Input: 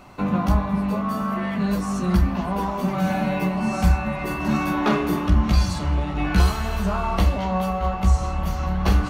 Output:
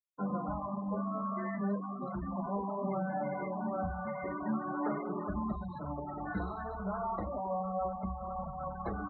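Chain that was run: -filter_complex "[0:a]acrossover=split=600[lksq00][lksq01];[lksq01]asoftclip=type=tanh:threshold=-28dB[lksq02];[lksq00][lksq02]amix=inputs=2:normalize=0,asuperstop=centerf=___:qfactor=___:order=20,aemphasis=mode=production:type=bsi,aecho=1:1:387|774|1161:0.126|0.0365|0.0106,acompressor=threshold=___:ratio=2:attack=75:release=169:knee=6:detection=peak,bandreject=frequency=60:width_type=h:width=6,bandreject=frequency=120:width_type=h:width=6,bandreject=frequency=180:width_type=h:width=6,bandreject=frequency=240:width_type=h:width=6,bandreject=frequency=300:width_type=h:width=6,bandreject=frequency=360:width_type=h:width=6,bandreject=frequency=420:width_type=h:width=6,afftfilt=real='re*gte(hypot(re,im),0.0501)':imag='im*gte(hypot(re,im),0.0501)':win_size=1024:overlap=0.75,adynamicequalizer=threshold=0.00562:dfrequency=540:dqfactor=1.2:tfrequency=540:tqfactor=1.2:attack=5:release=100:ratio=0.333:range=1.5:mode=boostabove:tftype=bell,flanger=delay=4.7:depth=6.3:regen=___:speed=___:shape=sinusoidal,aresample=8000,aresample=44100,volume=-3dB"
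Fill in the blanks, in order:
2800, 1.9, -29dB, 42, 0.37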